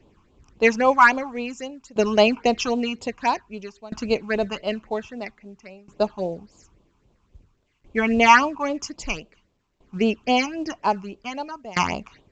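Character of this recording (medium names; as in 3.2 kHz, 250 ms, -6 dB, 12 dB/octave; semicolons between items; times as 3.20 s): phasing stages 8, 3.7 Hz, lowest notch 530–1900 Hz; tremolo saw down 0.51 Hz, depth 95%; µ-law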